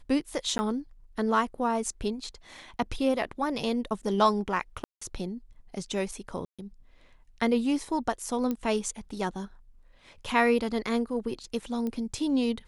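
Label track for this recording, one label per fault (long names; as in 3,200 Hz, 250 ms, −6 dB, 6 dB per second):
0.580000	0.590000	drop-out 10 ms
4.840000	5.010000	drop-out 175 ms
6.450000	6.590000	drop-out 136 ms
8.510000	8.510000	click −18 dBFS
11.870000	11.870000	click −22 dBFS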